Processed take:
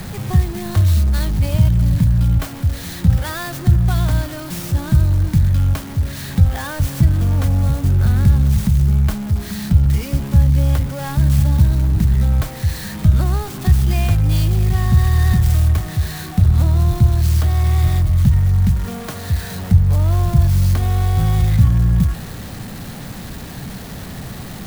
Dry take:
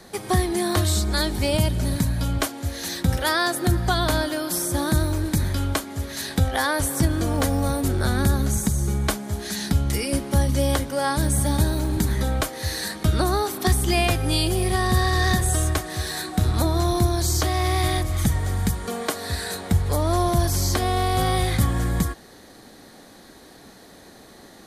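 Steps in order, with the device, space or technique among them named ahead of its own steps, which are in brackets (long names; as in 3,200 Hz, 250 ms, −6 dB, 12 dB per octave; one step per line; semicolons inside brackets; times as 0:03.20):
early CD player with a faulty converter (converter with a step at zero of −22.5 dBFS; converter with an unsteady clock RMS 0.038 ms)
low shelf with overshoot 220 Hz +12.5 dB, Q 1.5
level −7 dB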